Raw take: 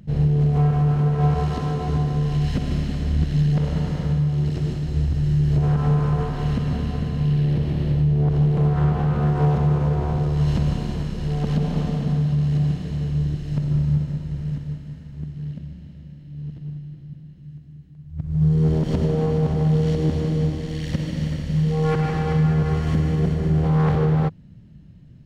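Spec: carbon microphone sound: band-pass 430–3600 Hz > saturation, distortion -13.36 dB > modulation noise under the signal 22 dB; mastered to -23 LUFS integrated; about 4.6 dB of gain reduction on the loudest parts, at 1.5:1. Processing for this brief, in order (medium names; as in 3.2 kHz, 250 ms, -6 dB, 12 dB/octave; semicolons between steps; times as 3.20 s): compression 1.5:1, threshold -28 dBFS; band-pass 430–3600 Hz; saturation -31 dBFS; modulation noise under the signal 22 dB; trim +16.5 dB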